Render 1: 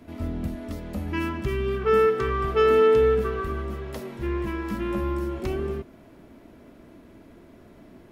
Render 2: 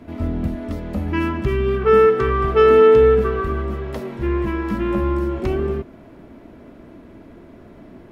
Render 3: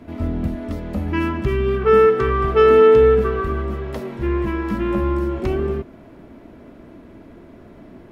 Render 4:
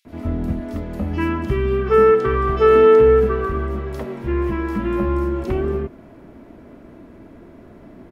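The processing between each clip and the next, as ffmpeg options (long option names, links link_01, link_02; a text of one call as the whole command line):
ffmpeg -i in.wav -af "highshelf=frequency=4000:gain=-10.5,volume=7dB" out.wav
ffmpeg -i in.wav -af anull out.wav
ffmpeg -i in.wav -filter_complex "[0:a]acrossover=split=3400[link_01][link_02];[link_01]adelay=50[link_03];[link_03][link_02]amix=inputs=2:normalize=0" out.wav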